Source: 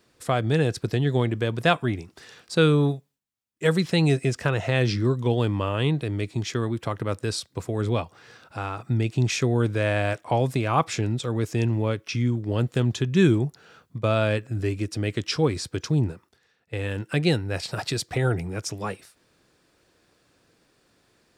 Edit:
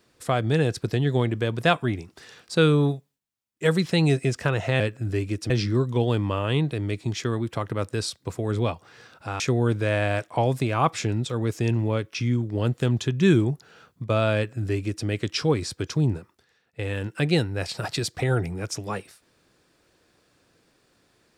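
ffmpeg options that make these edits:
-filter_complex "[0:a]asplit=4[s0][s1][s2][s3];[s0]atrim=end=4.802[s4];[s1]atrim=start=14.298:end=15.002[s5];[s2]atrim=start=4.798:end=8.702[s6];[s3]atrim=start=9.338[s7];[s4][s5]acrossfade=d=0.004:c1=hsin:c2=hsin[s8];[s8][s6]acrossfade=d=0.004:c1=hsin:c2=hsin[s9];[s9][s7]acrossfade=d=0.004:c1=hsin:c2=hsin"

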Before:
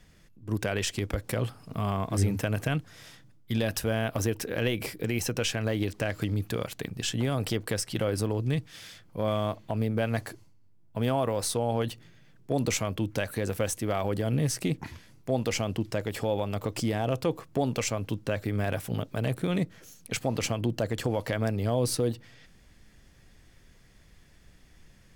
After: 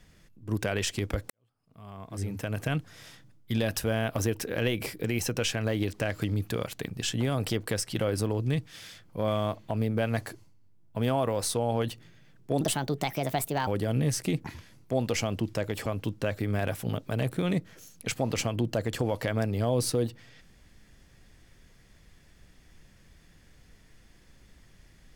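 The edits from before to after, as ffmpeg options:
-filter_complex "[0:a]asplit=5[s0][s1][s2][s3][s4];[s0]atrim=end=1.3,asetpts=PTS-STARTPTS,afade=t=out:st=1.296:d=0.004:c=hsin[s5];[s1]atrim=start=1.3:end=12.614,asetpts=PTS-STARTPTS,afade=t=in:d=1.49:c=qua[s6];[s2]atrim=start=12.61:end=14.04,asetpts=PTS-STARTPTS,asetrate=59535,aresample=44100,atrim=end_sample=46713,asetpts=PTS-STARTPTS[s7];[s3]atrim=start=14.036:end=16.232[s8];[s4]atrim=start=17.908[s9];[s5][s6]concat=n=2:v=0:a=1[s10];[s10][s7]acrossfade=d=0.004:c1=hsin:c2=hsin[s11];[s11][s8]acrossfade=d=0.004:c1=hsin:c2=hsin[s12];[s12][s9]acrossfade=d=0.004:c1=hsin:c2=hsin"

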